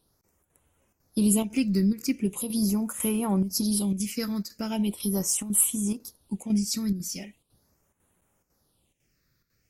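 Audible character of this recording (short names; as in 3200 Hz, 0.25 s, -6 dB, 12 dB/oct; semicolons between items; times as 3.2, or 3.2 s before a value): chopped level 2 Hz, depth 60%, duty 85%; phasing stages 6, 0.4 Hz, lowest notch 790–4800 Hz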